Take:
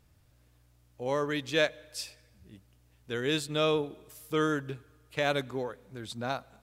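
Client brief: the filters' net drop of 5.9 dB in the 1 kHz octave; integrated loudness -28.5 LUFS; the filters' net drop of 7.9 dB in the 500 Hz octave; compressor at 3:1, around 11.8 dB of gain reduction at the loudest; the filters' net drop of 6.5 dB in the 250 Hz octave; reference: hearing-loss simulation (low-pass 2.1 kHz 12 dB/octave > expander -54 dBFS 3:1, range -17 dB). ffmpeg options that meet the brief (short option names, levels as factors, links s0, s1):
-af "equalizer=f=250:t=o:g=-6,equalizer=f=500:t=o:g=-6.5,equalizer=f=1000:t=o:g=-5.5,acompressor=threshold=0.00794:ratio=3,lowpass=2100,agate=range=0.141:threshold=0.002:ratio=3,volume=7.94"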